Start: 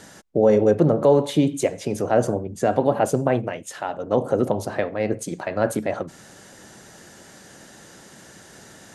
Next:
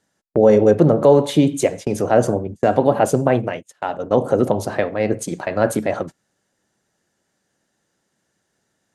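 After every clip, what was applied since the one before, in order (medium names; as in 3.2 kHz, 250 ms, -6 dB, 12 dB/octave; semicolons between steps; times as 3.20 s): gate -32 dBFS, range -29 dB; trim +4 dB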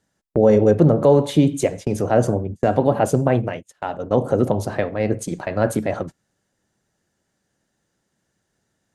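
bass shelf 130 Hz +10.5 dB; trim -3 dB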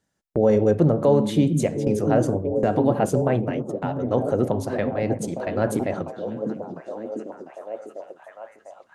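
repeats whose band climbs or falls 699 ms, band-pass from 200 Hz, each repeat 0.7 oct, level -2 dB; trim -4 dB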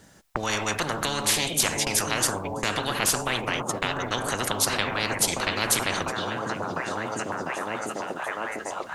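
spectrum-flattening compressor 10:1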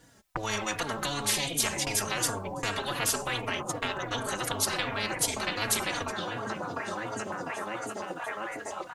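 endless flanger 3.6 ms -2.7 Hz; trim -1.5 dB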